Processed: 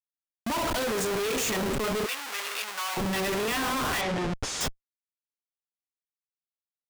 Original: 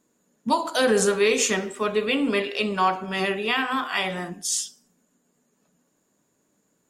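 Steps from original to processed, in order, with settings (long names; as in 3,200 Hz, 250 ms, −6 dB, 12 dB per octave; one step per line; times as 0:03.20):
comparator with hysteresis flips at −35.5 dBFS
0:02.06–0:02.97: high-pass filter 1,100 Hz 12 dB per octave
0:04.01–0:04.61: high-frequency loss of the air 80 metres
level −2 dB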